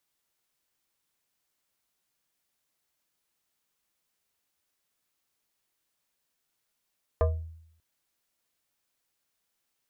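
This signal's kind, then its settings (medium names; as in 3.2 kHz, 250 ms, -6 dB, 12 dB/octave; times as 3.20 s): FM tone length 0.59 s, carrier 81.1 Hz, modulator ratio 6.88, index 1.4, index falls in 0.37 s exponential, decay 0.73 s, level -18 dB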